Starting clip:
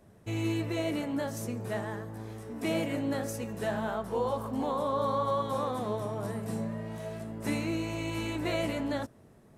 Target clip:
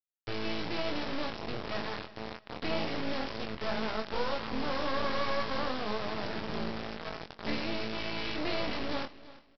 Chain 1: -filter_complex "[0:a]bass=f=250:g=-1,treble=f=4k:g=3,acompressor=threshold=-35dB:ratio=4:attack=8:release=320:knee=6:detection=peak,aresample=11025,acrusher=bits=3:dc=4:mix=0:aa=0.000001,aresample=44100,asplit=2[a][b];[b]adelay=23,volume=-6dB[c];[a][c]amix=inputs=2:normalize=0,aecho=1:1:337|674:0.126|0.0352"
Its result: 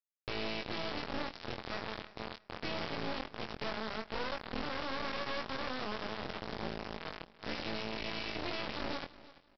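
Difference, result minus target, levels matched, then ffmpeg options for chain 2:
compressor: peak gain reduction +9 dB
-filter_complex "[0:a]bass=f=250:g=-1,treble=f=4k:g=3,aresample=11025,acrusher=bits=3:dc=4:mix=0:aa=0.000001,aresample=44100,asplit=2[a][b];[b]adelay=23,volume=-6dB[c];[a][c]amix=inputs=2:normalize=0,aecho=1:1:337|674:0.126|0.0352"

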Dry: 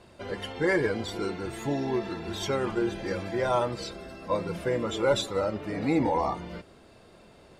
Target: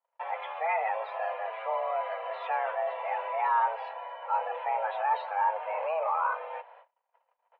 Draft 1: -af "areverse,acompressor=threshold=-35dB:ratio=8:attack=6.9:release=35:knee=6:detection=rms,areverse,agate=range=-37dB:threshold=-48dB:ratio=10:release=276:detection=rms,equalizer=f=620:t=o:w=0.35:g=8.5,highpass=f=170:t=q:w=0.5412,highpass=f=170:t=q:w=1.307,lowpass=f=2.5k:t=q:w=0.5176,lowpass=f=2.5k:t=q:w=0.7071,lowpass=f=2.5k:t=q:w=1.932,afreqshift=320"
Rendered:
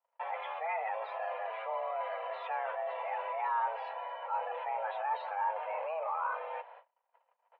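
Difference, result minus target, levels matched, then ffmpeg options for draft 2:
compressor: peak gain reduction +6.5 dB
-af "areverse,acompressor=threshold=-27.5dB:ratio=8:attack=6.9:release=35:knee=6:detection=rms,areverse,agate=range=-37dB:threshold=-48dB:ratio=10:release=276:detection=rms,equalizer=f=620:t=o:w=0.35:g=8.5,highpass=f=170:t=q:w=0.5412,highpass=f=170:t=q:w=1.307,lowpass=f=2.5k:t=q:w=0.5176,lowpass=f=2.5k:t=q:w=0.7071,lowpass=f=2.5k:t=q:w=1.932,afreqshift=320"

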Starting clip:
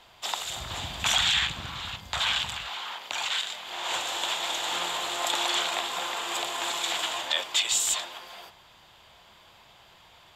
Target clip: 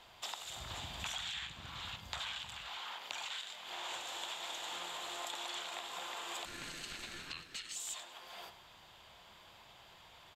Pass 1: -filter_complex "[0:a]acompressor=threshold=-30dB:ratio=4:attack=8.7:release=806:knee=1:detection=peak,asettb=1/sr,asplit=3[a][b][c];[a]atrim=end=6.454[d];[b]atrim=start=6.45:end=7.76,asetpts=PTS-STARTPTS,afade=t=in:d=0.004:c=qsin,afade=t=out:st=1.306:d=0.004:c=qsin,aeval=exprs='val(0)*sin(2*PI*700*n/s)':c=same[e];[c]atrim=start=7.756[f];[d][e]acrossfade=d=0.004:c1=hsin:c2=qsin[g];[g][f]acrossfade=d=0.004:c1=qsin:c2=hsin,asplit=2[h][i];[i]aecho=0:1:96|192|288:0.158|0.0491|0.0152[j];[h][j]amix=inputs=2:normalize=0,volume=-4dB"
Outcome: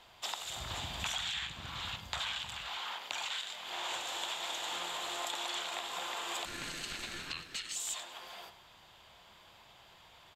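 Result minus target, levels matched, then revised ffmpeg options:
compressor: peak gain reduction -4.5 dB
-filter_complex "[0:a]acompressor=threshold=-36dB:ratio=4:attack=8.7:release=806:knee=1:detection=peak,asettb=1/sr,asplit=3[a][b][c];[a]atrim=end=6.454[d];[b]atrim=start=6.45:end=7.76,asetpts=PTS-STARTPTS,afade=t=in:d=0.004:c=qsin,afade=t=out:st=1.306:d=0.004:c=qsin,aeval=exprs='val(0)*sin(2*PI*700*n/s)':c=same[e];[c]atrim=start=7.756[f];[d][e]acrossfade=d=0.004:c1=hsin:c2=qsin[g];[g][f]acrossfade=d=0.004:c1=qsin:c2=hsin,asplit=2[h][i];[i]aecho=0:1:96|192|288:0.158|0.0491|0.0152[j];[h][j]amix=inputs=2:normalize=0,volume=-4dB"

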